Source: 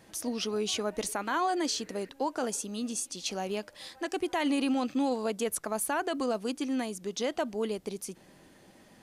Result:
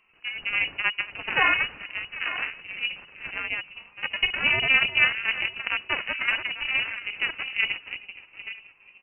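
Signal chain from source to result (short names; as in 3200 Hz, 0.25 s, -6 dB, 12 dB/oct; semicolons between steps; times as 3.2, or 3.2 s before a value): regenerating reverse delay 0.474 s, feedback 47%, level -7 dB; harmonic-percussive split percussive -13 dB; echo 0.41 s -19.5 dB; added harmonics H 3 -34 dB, 6 -7 dB, 7 -20 dB, 8 -20 dB, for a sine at -11.5 dBFS; inverted band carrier 2900 Hz; gain +8.5 dB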